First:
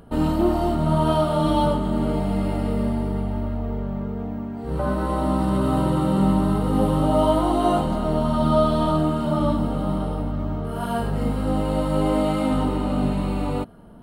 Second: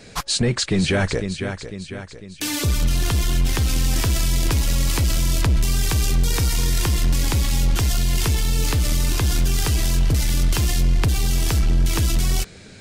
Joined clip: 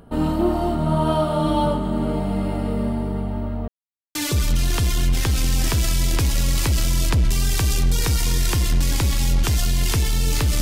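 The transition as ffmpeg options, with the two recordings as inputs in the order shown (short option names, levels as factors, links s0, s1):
-filter_complex "[0:a]apad=whole_dur=10.61,atrim=end=10.61,asplit=2[s0][s1];[s0]atrim=end=3.68,asetpts=PTS-STARTPTS,afade=t=out:st=3.676:d=0.004:c=hsin[s2];[s1]atrim=start=3.68:end=4.15,asetpts=PTS-STARTPTS,volume=0[s3];[1:a]atrim=start=2.47:end=8.93,asetpts=PTS-STARTPTS,afade=t=in:d=0.004:c=hsin[s4];[s2][s3][s4]concat=n=3:v=0:a=1"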